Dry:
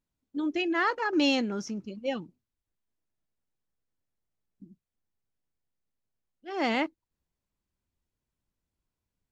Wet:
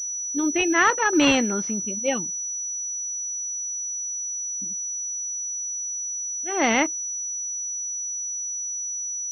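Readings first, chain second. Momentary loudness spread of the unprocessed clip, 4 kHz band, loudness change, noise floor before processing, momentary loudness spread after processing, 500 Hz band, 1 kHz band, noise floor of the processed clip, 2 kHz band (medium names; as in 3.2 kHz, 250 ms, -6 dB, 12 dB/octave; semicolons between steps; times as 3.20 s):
13 LU, +5.5 dB, +5.0 dB, under -85 dBFS, 8 LU, +6.0 dB, +7.5 dB, -30 dBFS, +8.5 dB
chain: treble shelf 2.3 kHz +11.5 dB; class-D stage that switches slowly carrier 5.9 kHz; trim +5.5 dB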